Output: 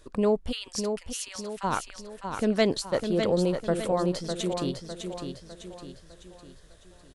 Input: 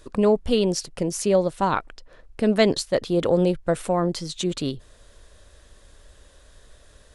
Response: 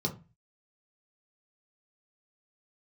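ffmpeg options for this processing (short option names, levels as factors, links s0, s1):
-filter_complex "[0:a]asplit=3[s0][s1][s2];[s0]afade=t=out:st=0.51:d=0.02[s3];[s1]highpass=f=1300:w=0.5412,highpass=f=1300:w=1.3066,afade=t=in:st=0.51:d=0.02,afade=t=out:st=1.63:d=0.02[s4];[s2]afade=t=in:st=1.63:d=0.02[s5];[s3][s4][s5]amix=inputs=3:normalize=0,aecho=1:1:604|1208|1812|2416|3020:0.473|0.213|0.0958|0.0431|0.0194,volume=0.562"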